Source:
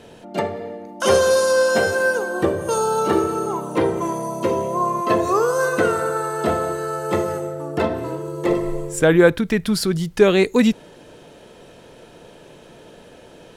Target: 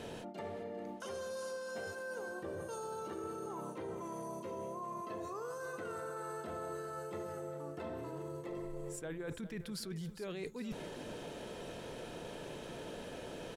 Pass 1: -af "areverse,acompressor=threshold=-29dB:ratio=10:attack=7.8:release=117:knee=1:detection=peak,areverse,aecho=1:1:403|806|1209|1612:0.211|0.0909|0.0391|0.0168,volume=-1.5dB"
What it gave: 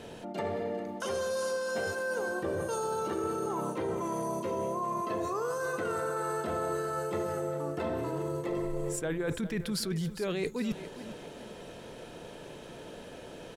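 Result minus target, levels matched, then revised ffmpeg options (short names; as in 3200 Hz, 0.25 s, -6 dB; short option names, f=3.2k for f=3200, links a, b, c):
compressor: peak gain reduction -10 dB
-af "areverse,acompressor=threshold=-40dB:ratio=10:attack=7.8:release=117:knee=1:detection=peak,areverse,aecho=1:1:403|806|1209|1612:0.211|0.0909|0.0391|0.0168,volume=-1.5dB"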